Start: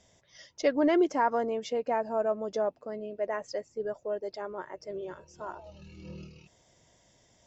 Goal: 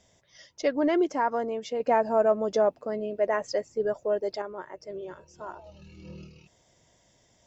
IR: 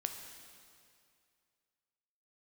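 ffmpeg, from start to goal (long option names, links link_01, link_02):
-filter_complex "[0:a]asettb=1/sr,asplit=3[link_01][link_02][link_03];[link_01]atrim=end=1.804[link_04];[link_02]atrim=start=1.8:end=4.42,asetpts=PTS-STARTPTS,afade=type=in:duration=0.004:curve=qsin,afade=type=out:start_time=2.616:duration=0.004:curve=qsin,acontrast=62[link_05];[link_03]atrim=start=4.416[link_06];[link_04][link_05]acrossfade=duration=0.004:curve1=hsin:curve2=qsin[link_07];[link_07][link_06]acrossfade=duration=0.004:curve1=qsin:curve2=hsin"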